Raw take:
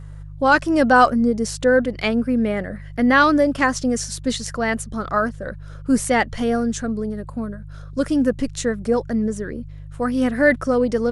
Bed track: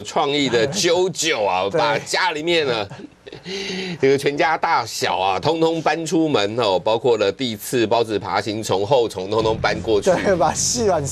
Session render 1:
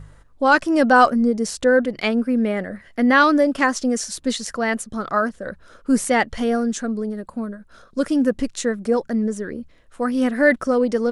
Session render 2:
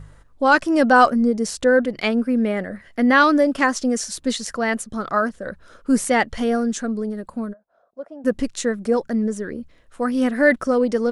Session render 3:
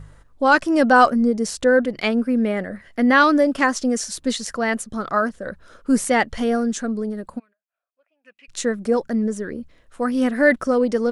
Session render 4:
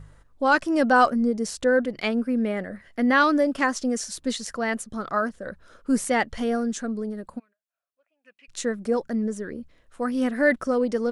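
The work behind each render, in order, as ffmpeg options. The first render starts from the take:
ffmpeg -i in.wav -af "bandreject=frequency=50:width_type=h:width=4,bandreject=frequency=100:width_type=h:width=4,bandreject=frequency=150:width_type=h:width=4" out.wav
ffmpeg -i in.wav -filter_complex "[0:a]asplit=3[link_01][link_02][link_03];[link_01]afade=type=out:start_time=7.52:duration=0.02[link_04];[link_02]bandpass=frequency=690:width_type=q:width=5.7,afade=type=in:start_time=7.52:duration=0.02,afade=type=out:start_time=8.24:duration=0.02[link_05];[link_03]afade=type=in:start_time=8.24:duration=0.02[link_06];[link_04][link_05][link_06]amix=inputs=3:normalize=0" out.wav
ffmpeg -i in.wav -filter_complex "[0:a]asplit=3[link_01][link_02][link_03];[link_01]afade=type=out:start_time=7.38:duration=0.02[link_04];[link_02]bandpass=frequency=2500:width_type=q:width=9.3,afade=type=in:start_time=7.38:duration=0.02,afade=type=out:start_time=8.48:duration=0.02[link_05];[link_03]afade=type=in:start_time=8.48:duration=0.02[link_06];[link_04][link_05][link_06]amix=inputs=3:normalize=0" out.wav
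ffmpeg -i in.wav -af "volume=-4.5dB" out.wav

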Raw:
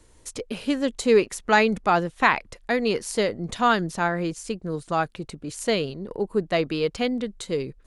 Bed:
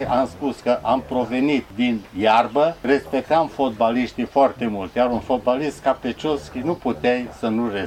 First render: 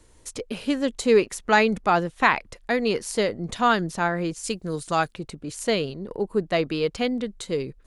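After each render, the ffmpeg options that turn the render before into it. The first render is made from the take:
ffmpeg -i in.wav -filter_complex "[0:a]asettb=1/sr,asplit=3[link_01][link_02][link_03];[link_01]atrim=end=4.434[link_04];[link_02]atrim=start=4.43:end=5.12,asetpts=PTS-STARTPTS,afade=type=in:duration=0.004:curve=qsin,afade=type=out:start_time=0.686:duration=0.004:curve=qsin,highshelf=frequency=2900:gain=11[link_05];[link_03]atrim=start=5.116[link_06];[link_04][link_05]acrossfade=duration=0.004:curve1=hsin:curve2=qsin[link_07];[link_07][link_06]acrossfade=duration=0.004:curve1=qsin:curve2=hsin" out.wav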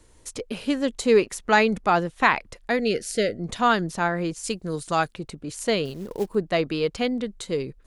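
ffmpeg -i in.wav -filter_complex "[0:a]asettb=1/sr,asplit=3[link_01][link_02][link_03];[link_01]atrim=end=2.794[link_04];[link_02]atrim=start=2.79:end=3.4,asetpts=PTS-STARTPTS,afade=type=in:duration=0.004:curve=qsin,afade=type=out:start_time=0.606:duration=0.004:curve=qsin,asuperstop=centerf=990:order=12:qfactor=1.6[link_05];[link_03]atrim=start=3.396[link_06];[link_04][link_05]acrossfade=duration=0.004:curve1=hsin:curve2=qsin[link_07];[link_07][link_06]acrossfade=duration=0.004:curve1=qsin:curve2=hsin,asettb=1/sr,asplit=3[link_08][link_09][link_10];[link_08]atrim=end=5.854[link_11];[link_09]atrim=start=5.85:end=6.35,asetpts=PTS-STARTPTS,afade=type=in:duration=0.004:curve=qsin,afade=type=out:start_time=0.496:duration=0.004:curve=qsin,acrusher=bits=5:mode=log:mix=0:aa=0.000001[link_12];[link_10]atrim=start=6.346[link_13];[link_11][link_12]acrossfade=duration=0.004:curve1=hsin:curve2=qsin[link_14];[link_14][link_13]acrossfade=duration=0.004:curve1=qsin:curve2=hsin" out.wav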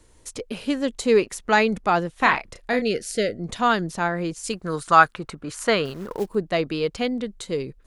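ffmpeg -i in.wav -filter_complex "[0:a]asettb=1/sr,asplit=3[link_01][link_02][link_03];[link_01]atrim=end=2.164[link_04];[link_02]atrim=start=2.16:end=2.82,asetpts=PTS-STARTPTS,afade=type=in:duration=0.004:curve=qsin,afade=type=out:start_time=0.656:duration=0.004:curve=qsin,asplit=2[link_05][link_06];[link_06]adelay=32,volume=-7dB[link_07];[link_05][link_07]amix=inputs=2:normalize=0,atrim=end_sample=29106[link_08];[link_03]atrim=start=2.816[link_09];[link_04][link_08]acrossfade=duration=0.004:curve1=hsin:curve2=qsin[link_10];[link_10][link_09]acrossfade=duration=0.004:curve1=qsin:curve2=hsin,asettb=1/sr,asplit=3[link_11][link_12][link_13];[link_11]atrim=end=4.534[link_14];[link_12]atrim=start=4.53:end=6.2,asetpts=PTS-STARTPTS,afade=type=in:duration=0.004:curve=qsin,afade=type=out:start_time=1.666:duration=0.004:curve=qsin,equalizer=frequency=1300:width=1.1:gain=13[link_15];[link_13]atrim=start=6.196[link_16];[link_14][link_15]acrossfade=duration=0.004:curve1=hsin:curve2=qsin[link_17];[link_17][link_16]acrossfade=duration=0.004:curve1=qsin:curve2=hsin" out.wav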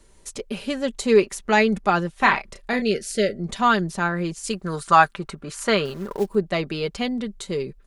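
ffmpeg -i in.wav -af "aecho=1:1:5.1:0.48" out.wav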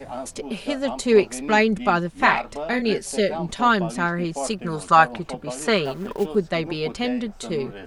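ffmpeg -i in.wav -i bed.wav -filter_complex "[1:a]volume=-13.5dB[link_01];[0:a][link_01]amix=inputs=2:normalize=0" out.wav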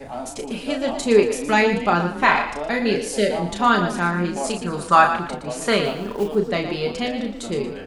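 ffmpeg -i in.wav -filter_complex "[0:a]asplit=2[link_01][link_02];[link_02]adelay=34,volume=-5.5dB[link_03];[link_01][link_03]amix=inputs=2:normalize=0,asplit=5[link_04][link_05][link_06][link_07][link_08];[link_05]adelay=116,afreqshift=31,volume=-10dB[link_09];[link_06]adelay=232,afreqshift=62,volume=-19.9dB[link_10];[link_07]adelay=348,afreqshift=93,volume=-29.8dB[link_11];[link_08]adelay=464,afreqshift=124,volume=-39.7dB[link_12];[link_04][link_09][link_10][link_11][link_12]amix=inputs=5:normalize=0" out.wav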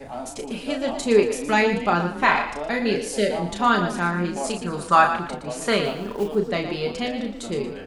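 ffmpeg -i in.wav -af "volume=-2dB" out.wav

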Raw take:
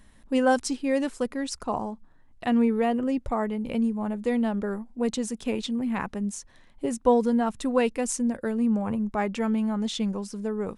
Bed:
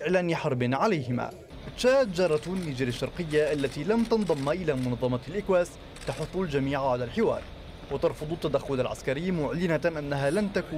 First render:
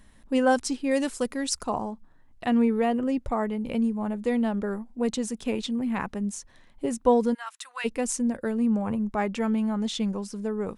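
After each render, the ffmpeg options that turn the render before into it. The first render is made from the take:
ffmpeg -i in.wav -filter_complex "[0:a]asettb=1/sr,asplit=3[link_01][link_02][link_03];[link_01]atrim=end=0.914[link_04];[link_02]atrim=start=0.91:end=1.7,asetpts=PTS-STARTPTS,afade=type=in:duration=0.004:curve=qsin,afade=type=out:start_time=0.786:duration=0.004:curve=qsin,highshelf=frequency=3800:gain=9[link_05];[link_03]atrim=start=1.696[link_06];[link_04][link_05]acrossfade=duration=0.004:curve1=hsin:curve2=qsin[link_07];[link_07][link_06]acrossfade=duration=0.004:curve1=qsin:curve2=hsin,asplit=3[link_08][link_09][link_10];[link_08]afade=type=out:start_time=7.33:duration=0.02[link_11];[link_09]highpass=frequency=1200:width=0.5412,highpass=frequency=1200:width=1.3066,afade=type=in:start_time=7.33:duration=0.02,afade=type=out:start_time=7.84:duration=0.02[link_12];[link_10]afade=type=in:start_time=7.84:duration=0.02[link_13];[link_11][link_12][link_13]amix=inputs=3:normalize=0" out.wav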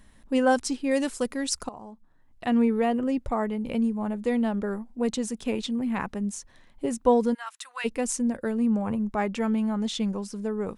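ffmpeg -i in.wav -filter_complex "[0:a]asplit=2[link_01][link_02];[link_01]atrim=end=1.69,asetpts=PTS-STARTPTS,afade=type=out:start_time=1.686:duration=0.004:curve=hsin:silence=0.125893[link_03];[link_02]atrim=start=1.69,asetpts=PTS-STARTPTS,afade=type=in:duration=0.88:silence=0.125893[link_04];[link_03][link_04]concat=n=2:v=0:a=1" out.wav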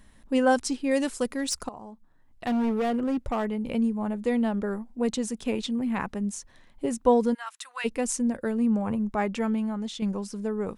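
ffmpeg -i in.wav -filter_complex "[0:a]asettb=1/sr,asplit=3[link_01][link_02][link_03];[link_01]atrim=end=1.364[link_04];[link_02]atrim=start=1.36:end=3.45,asetpts=PTS-STARTPTS,afade=type=in:duration=0.004:curve=qsin,afade=type=out:start_time=2.086:duration=0.004:curve=qsin,volume=22.5dB,asoftclip=hard,volume=-22.5dB[link_05];[link_03]atrim=start=3.446[link_06];[link_04][link_05]acrossfade=duration=0.004:curve1=hsin:curve2=qsin[link_07];[link_07][link_06]acrossfade=duration=0.004:curve1=qsin:curve2=hsin,asplit=2[link_08][link_09];[link_08]atrim=end=10.02,asetpts=PTS-STARTPTS,afade=type=out:start_time=9.35:duration=0.67:silence=0.446684[link_10];[link_09]atrim=start=10.02,asetpts=PTS-STARTPTS,afade=type=in:duration=0.004:curve=hsin:silence=0.446684[link_11];[link_10][link_11]concat=n=2:v=0:a=1" out.wav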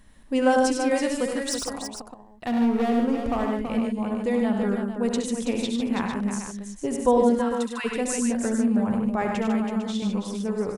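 ffmpeg -i in.wav -af "aecho=1:1:68|99|149|328|452:0.398|0.501|0.447|0.422|0.316" out.wav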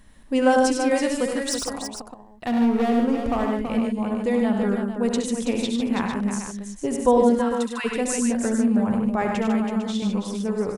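ffmpeg -i in.wav -af "volume=2dB" out.wav

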